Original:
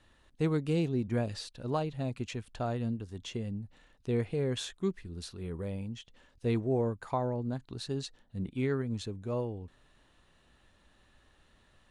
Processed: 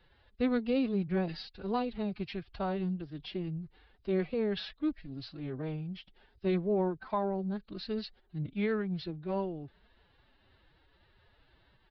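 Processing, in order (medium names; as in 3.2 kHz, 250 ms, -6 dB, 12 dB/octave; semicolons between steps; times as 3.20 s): formant-preserving pitch shift +8 st; resampled via 11.025 kHz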